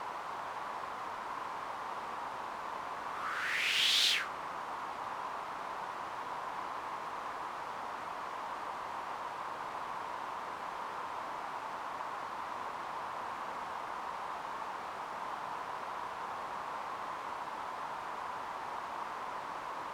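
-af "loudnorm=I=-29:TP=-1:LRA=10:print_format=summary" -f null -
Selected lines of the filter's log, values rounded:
Input Integrated:    -38.3 LUFS
Input True Peak:     -17.3 dBTP
Input LRA:             8.1 LU
Input Threshold:     -48.3 LUFS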